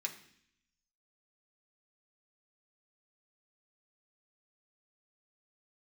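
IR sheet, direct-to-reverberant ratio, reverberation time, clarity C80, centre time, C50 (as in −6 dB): 1.0 dB, 0.65 s, 14.0 dB, 13 ms, 11.5 dB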